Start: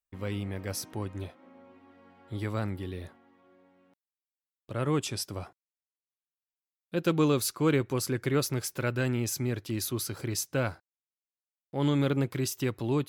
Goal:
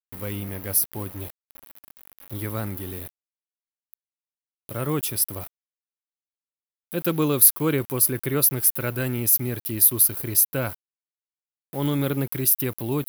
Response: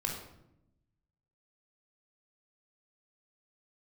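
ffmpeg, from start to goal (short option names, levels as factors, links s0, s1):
-af "acompressor=mode=upward:threshold=0.00631:ratio=2.5,aeval=exprs='val(0)*gte(abs(val(0)),0.00631)':c=same,aexciter=amount=11.8:drive=5.1:freq=10000,volume=1.26"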